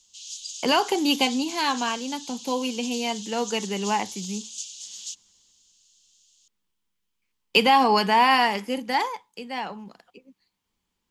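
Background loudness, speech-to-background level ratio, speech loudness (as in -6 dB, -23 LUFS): -36.0 LUFS, 12.5 dB, -23.5 LUFS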